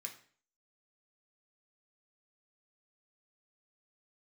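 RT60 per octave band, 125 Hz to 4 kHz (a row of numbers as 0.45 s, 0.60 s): 0.50 s, 0.50 s, 0.50 s, 0.45 s, 0.45 s, 0.45 s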